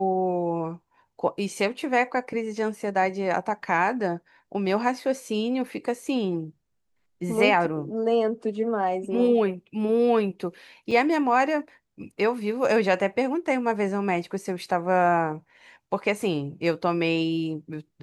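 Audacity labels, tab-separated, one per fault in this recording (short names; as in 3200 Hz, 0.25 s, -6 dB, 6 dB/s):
10.910000	10.910000	gap 4.3 ms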